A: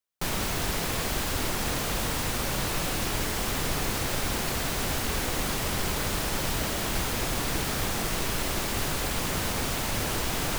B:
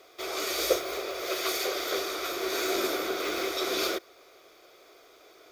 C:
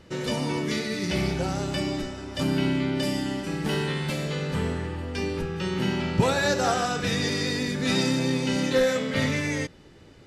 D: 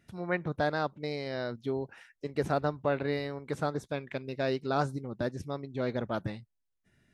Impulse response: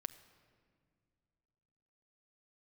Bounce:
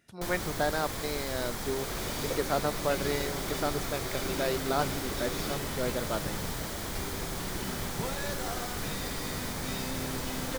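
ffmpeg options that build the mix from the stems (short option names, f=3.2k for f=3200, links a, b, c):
-filter_complex "[0:a]equalizer=f=2.7k:w=6.4:g=-8,volume=-7dB[a];[1:a]adelay=1600,volume=-11dB[b];[2:a]adelay=1800,volume=-14dB[c];[3:a]bass=f=250:g=-7,treble=f=4k:g=4,volume=0.5dB[d];[a][b][c][d]amix=inputs=4:normalize=0"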